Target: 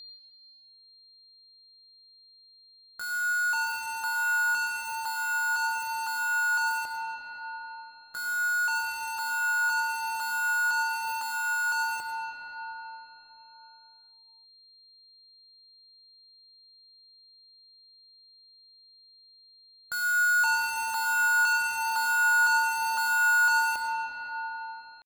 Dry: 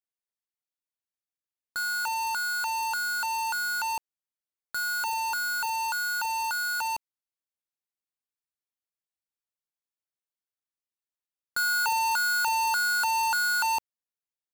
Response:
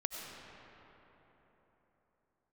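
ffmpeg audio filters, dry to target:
-filter_complex "[0:a]atempo=0.58,aeval=exprs='val(0)+0.0112*sin(2*PI*4200*n/s)':channel_layout=same[link_01];[1:a]atrim=start_sample=2205[link_02];[link_01][link_02]afir=irnorm=-1:irlink=0,volume=-3.5dB"

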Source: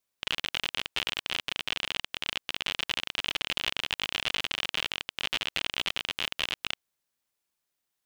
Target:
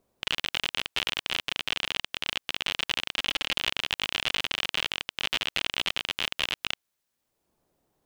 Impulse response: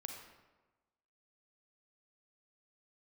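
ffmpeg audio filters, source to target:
-filter_complex "[0:a]asettb=1/sr,asplit=3[link_01][link_02][link_03];[link_01]atrim=end=3.114[link_04];[link_02]atrim=start=3.11:end=3.55,asetpts=PTS-STARTPTS,afade=type=in:duration=0.004:curve=qsin,afade=type=out:start_time=0.436:duration=0.004:curve=qsin,aecho=1:1:3.7:0.34,atrim=end_sample=19404[link_05];[link_03]atrim=start=3.546[link_06];[link_04][link_05]acrossfade=duration=0.004:curve1=hsin:curve2=qsin[link_07];[link_07][link_06]acrossfade=duration=0.004:curve1=qsin:curve2=hsin,acrossover=split=820|4600[link_08][link_09][link_10];[link_08]acompressor=mode=upward:threshold=-60dB:ratio=2.5[link_11];[link_11][link_09][link_10]amix=inputs=3:normalize=0,volume=2dB"

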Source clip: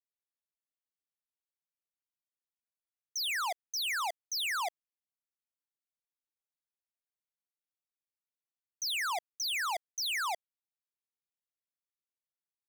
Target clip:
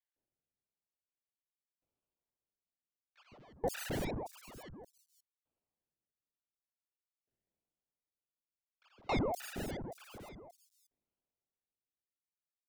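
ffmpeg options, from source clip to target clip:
ffmpeg -i in.wav -filter_complex "[0:a]asettb=1/sr,asplit=3[link_01][link_02][link_03];[link_01]atrim=end=4.084[link_04];[link_02]atrim=start=4.08:end=4.65,asetpts=PTS-STARTPTS,afade=type=in:duration=0.004:curve=qsin,afade=type=out:start_time=0.566:duration=0.004:curve=qsin,highshelf=frequency=3600:gain=-10.5[link_05];[link_03]atrim=start=4.646[link_06];[link_04][link_05]acrossfade=duration=0.004:curve1=hsin:curve2=qsin[link_07];[link_07][link_06]acrossfade=duration=0.004:curve1=qsin:curve2=hsin,acrusher=samples=32:mix=1:aa=0.000001:lfo=1:lforange=19.2:lforate=0.87,acrossover=split=1200|4900[link_08][link_09][link_10];[link_08]adelay=160[link_11];[link_10]adelay=520[link_12];[link_11][link_09][link_12]amix=inputs=3:normalize=0,aeval=exprs='val(0)*pow(10,-31*if(lt(mod(0.55*n/s,1),2*abs(0.55)/1000),1-mod(0.55*n/s,1)/(2*abs(0.55)/1000),(mod(0.55*n/s,1)-2*abs(0.55)/1000)/(1-2*abs(0.55)/1000))/20)':channel_layout=same,volume=3.5dB" out.wav

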